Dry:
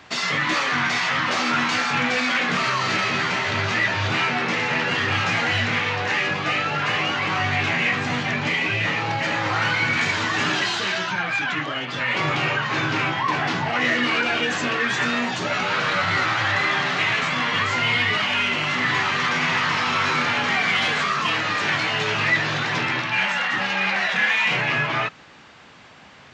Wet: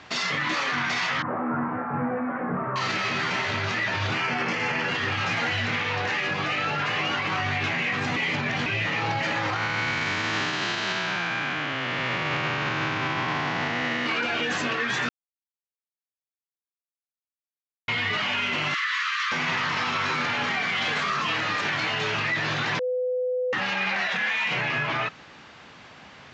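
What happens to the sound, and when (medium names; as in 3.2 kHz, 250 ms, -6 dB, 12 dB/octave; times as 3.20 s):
1.22–2.76 s: Bessel low-pass 860 Hz, order 6
4.15–4.88 s: band-stop 3.8 kHz, Q 5.7
8.16–8.66 s: reverse
9.56–14.06 s: spectral blur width 442 ms
15.09–17.88 s: mute
18.74–19.32 s: Chebyshev high-pass 1.1 kHz, order 6
22.79–23.53 s: bleep 503 Hz -23 dBFS
whole clip: low-pass 7.3 kHz 24 dB/octave; peak limiter -18 dBFS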